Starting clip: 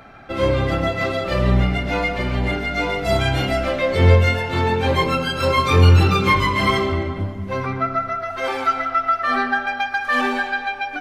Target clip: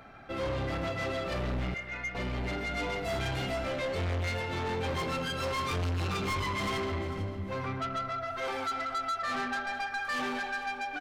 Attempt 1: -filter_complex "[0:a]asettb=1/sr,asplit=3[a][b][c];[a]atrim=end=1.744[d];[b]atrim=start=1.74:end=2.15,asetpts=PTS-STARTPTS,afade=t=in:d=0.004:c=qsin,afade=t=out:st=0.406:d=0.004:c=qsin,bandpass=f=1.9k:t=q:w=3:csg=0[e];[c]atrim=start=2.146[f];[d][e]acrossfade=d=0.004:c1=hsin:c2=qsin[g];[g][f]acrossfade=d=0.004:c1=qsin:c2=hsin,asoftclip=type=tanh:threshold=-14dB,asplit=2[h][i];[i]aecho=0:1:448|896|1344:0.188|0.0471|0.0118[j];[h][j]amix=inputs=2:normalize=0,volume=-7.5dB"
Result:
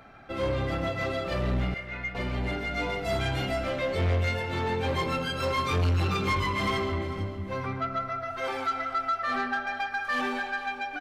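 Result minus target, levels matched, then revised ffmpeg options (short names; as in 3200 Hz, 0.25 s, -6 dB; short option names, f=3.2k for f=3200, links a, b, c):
soft clip: distortion -5 dB
-filter_complex "[0:a]asettb=1/sr,asplit=3[a][b][c];[a]atrim=end=1.744[d];[b]atrim=start=1.74:end=2.15,asetpts=PTS-STARTPTS,afade=t=in:d=0.004:c=qsin,afade=t=out:st=0.406:d=0.004:c=qsin,bandpass=f=1.9k:t=q:w=3:csg=0[e];[c]atrim=start=2.146[f];[d][e]acrossfade=d=0.004:c1=hsin:c2=qsin[g];[g][f]acrossfade=d=0.004:c1=qsin:c2=hsin,asoftclip=type=tanh:threshold=-22dB,asplit=2[h][i];[i]aecho=0:1:448|896|1344:0.188|0.0471|0.0118[j];[h][j]amix=inputs=2:normalize=0,volume=-7.5dB"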